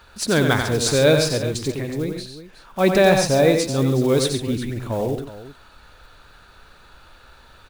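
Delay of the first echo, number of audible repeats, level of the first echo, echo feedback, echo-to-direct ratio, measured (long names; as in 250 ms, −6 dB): 91 ms, 3, −6.0 dB, repeats not evenly spaced, −4.5 dB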